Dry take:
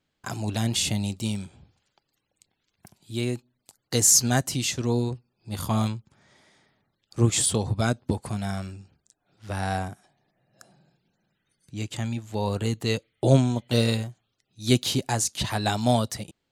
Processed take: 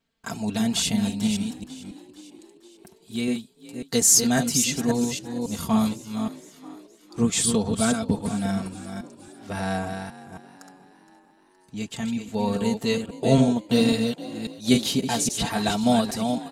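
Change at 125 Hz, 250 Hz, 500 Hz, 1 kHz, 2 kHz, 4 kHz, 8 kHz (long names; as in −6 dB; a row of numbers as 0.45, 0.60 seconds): −4.5, +5.5, +2.0, +1.5, +1.5, +1.5, +1.5 decibels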